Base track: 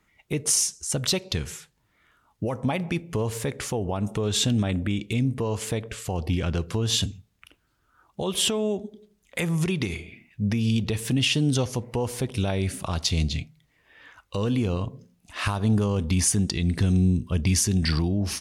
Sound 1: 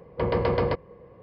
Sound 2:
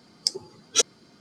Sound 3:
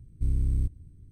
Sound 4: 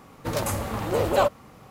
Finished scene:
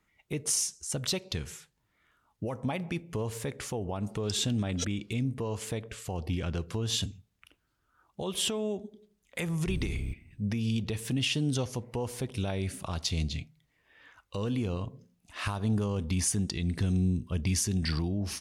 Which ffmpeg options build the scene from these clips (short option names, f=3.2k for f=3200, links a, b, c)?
-filter_complex "[0:a]volume=-6.5dB[a];[3:a]lowshelf=f=84:g=-12[b];[2:a]atrim=end=1.2,asetpts=PTS-STARTPTS,volume=-15.5dB,afade=t=in:d=0.004:c=hsin,afade=t=out:st=1.196:d=0.004:c=hsin,adelay=4030[c];[b]atrim=end=1.11,asetpts=PTS-STARTPTS,volume=-1.5dB,afade=t=in:d=0.004:c=hsin,afade=t=out:st=1.106:d=0.004:c=hsin,adelay=417186S[d];[a][c][d]amix=inputs=3:normalize=0"